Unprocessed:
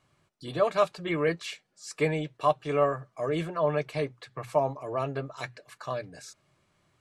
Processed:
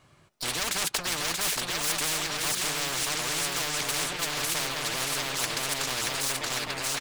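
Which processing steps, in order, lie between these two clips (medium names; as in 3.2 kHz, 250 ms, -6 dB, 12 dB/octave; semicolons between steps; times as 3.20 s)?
waveshaping leveller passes 3; bouncing-ball echo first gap 630 ms, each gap 0.8×, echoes 5; spectrum-flattening compressor 10:1; trim -5.5 dB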